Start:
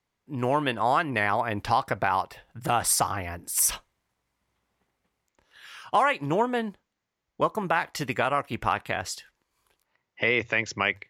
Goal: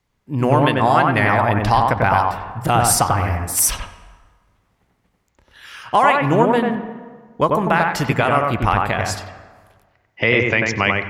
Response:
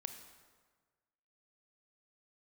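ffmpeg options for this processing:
-filter_complex "[0:a]lowshelf=f=140:g=10.5,asplit=2[a][b];[1:a]atrim=start_sample=2205,lowpass=2.3k,adelay=94[c];[b][c]afir=irnorm=-1:irlink=0,volume=1.5dB[d];[a][d]amix=inputs=2:normalize=0,volume=6.5dB"

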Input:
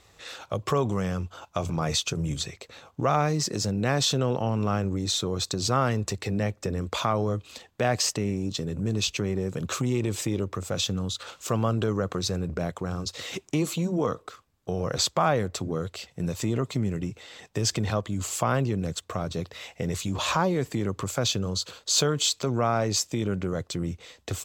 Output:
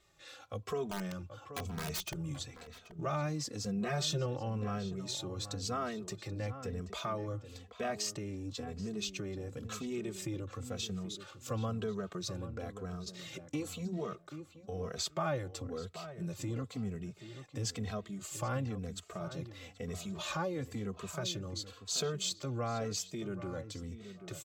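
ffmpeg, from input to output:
-filter_complex "[0:a]bandreject=f=940:w=9.2,asettb=1/sr,asplit=3[a][b][c];[a]atrim=end=0.884[d];[b]atrim=start=0.88:end=2.27,asetpts=PTS-STARTPTS,afade=t=in:d=0.004:c=qsin,afade=t=out:st=1.386:d=0.004:c=qsin,aeval=exprs='(mod(8.91*val(0)+1,2)-1)/8.91':c=same[e];[c]atrim=start=2.266[f];[d][e]acrossfade=d=0.004:c1=hsin:c2=qsin[g];[g][f]acrossfade=d=0.004:c1=qsin:c2=hsin,asettb=1/sr,asplit=3[h][i][j];[h]atrim=end=3.654[k];[i]atrim=start=3.65:end=4.26,asetpts=PTS-STARTPTS,afade=t=in:d=0.004:c=qsin,afade=t=out:st=0.606:d=0.004:c=qsin,aecho=1:1:5.6:0.69,atrim=end_sample=26901[l];[j]atrim=start=4.256[m];[k][l]acrossfade=d=0.004:c1=hsin:c2=qsin[n];[n][m]acrossfade=d=0.004:c1=qsin:c2=hsin,asplit=2[o][p];[p]adelay=781,lowpass=f=2.2k:p=1,volume=-11dB,asplit=2[q][r];[r]adelay=781,lowpass=f=2.2k:p=1,volume=0.19,asplit=2[s][t];[t]adelay=781,lowpass=f=2.2k:p=1,volume=0.19[u];[o][q][s][u]amix=inputs=4:normalize=0,asplit=2[v][w];[w]adelay=2.8,afreqshift=-0.99[x];[v][x]amix=inputs=2:normalize=1,volume=-8.5dB"

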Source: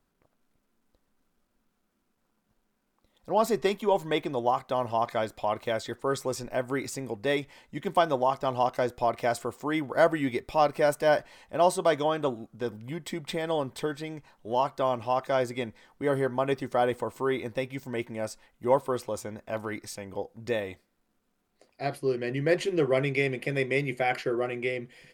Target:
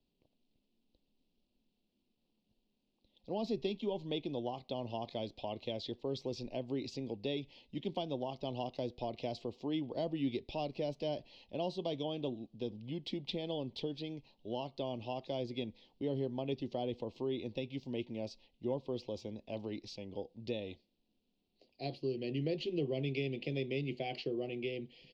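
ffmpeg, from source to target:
-filter_complex "[0:a]firequalizer=gain_entry='entry(140,0);entry(240,3);entry(890,-7);entry(1400,-28);entry(2700,5);entry(4400,6);entry(8700,-30)':delay=0.05:min_phase=1,acrossover=split=250[a][b];[b]acompressor=threshold=-31dB:ratio=3[c];[a][c]amix=inputs=2:normalize=0,volume=-6dB"

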